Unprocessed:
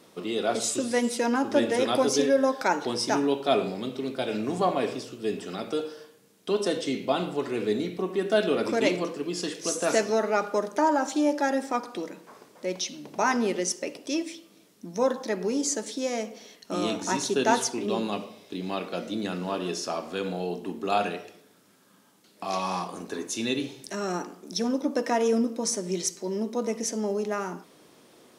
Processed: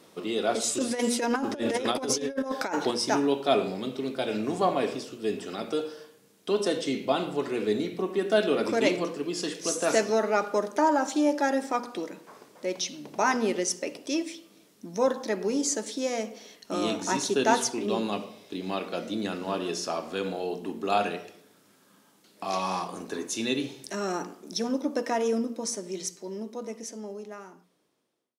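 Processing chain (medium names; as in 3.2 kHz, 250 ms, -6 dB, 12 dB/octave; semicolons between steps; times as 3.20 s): fade out at the end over 4.23 s; hum notches 60/120/180/240 Hz; 0.77–2.91 s: compressor with a negative ratio -27 dBFS, ratio -0.5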